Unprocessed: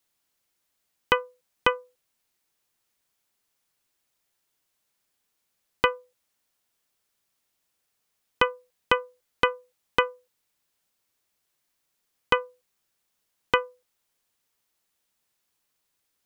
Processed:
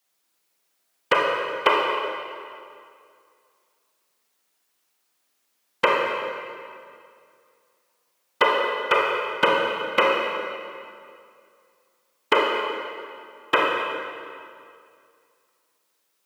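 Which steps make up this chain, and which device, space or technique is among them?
whispering ghost (whisper effect; high-pass 230 Hz 12 dB/octave; reverberation RT60 2.3 s, pre-delay 27 ms, DRR -2 dB); trim +2 dB

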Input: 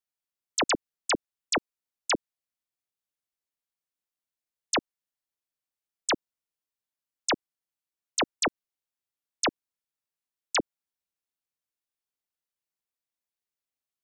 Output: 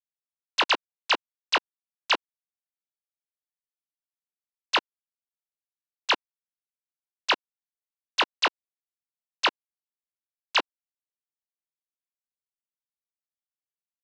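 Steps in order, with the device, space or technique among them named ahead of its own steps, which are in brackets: hand-held game console (bit crusher 4-bit; cabinet simulation 420–5000 Hz, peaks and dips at 1 kHz +8 dB, 1.5 kHz +4 dB, 2.8 kHz +9 dB, 4 kHz +5 dB); trim -2.5 dB

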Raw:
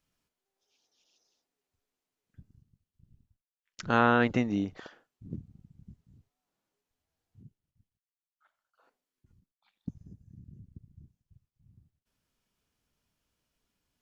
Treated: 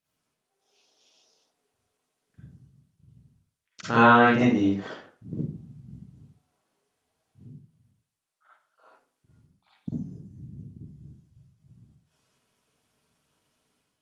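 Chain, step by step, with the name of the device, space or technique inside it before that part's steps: far-field microphone of a smart speaker (reverberation RT60 0.45 s, pre-delay 41 ms, DRR -8 dB; high-pass 110 Hz 12 dB/octave; level rider gain up to 7 dB; trim -3.5 dB; Opus 32 kbps 48 kHz)

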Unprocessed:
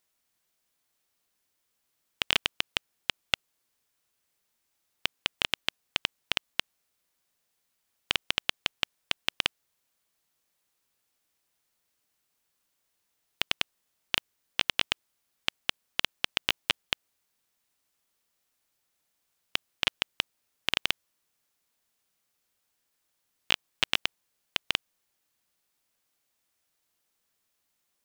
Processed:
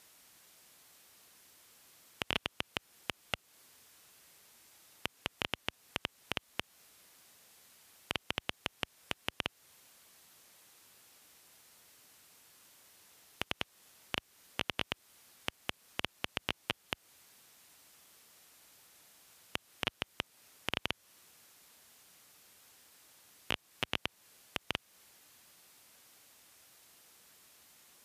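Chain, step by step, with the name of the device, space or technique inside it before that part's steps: podcast mastering chain (high-pass 62 Hz 12 dB/octave; de-esser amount 70%; compression 2.5:1, threshold -45 dBFS, peak gain reduction 11 dB; peak limiter -29.5 dBFS, peak gain reduction 8.5 dB; trim +18 dB; MP3 96 kbps 32 kHz)

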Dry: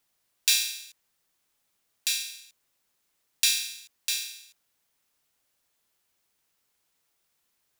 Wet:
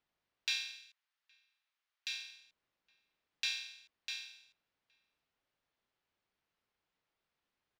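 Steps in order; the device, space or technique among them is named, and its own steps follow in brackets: shout across a valley (distance through air 230 m; echo from a far wall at 140 m, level -27 dB); 0.76–2.12 s: high-pass 1.2 kHz 12 dB/octave; trim -4.5 dB

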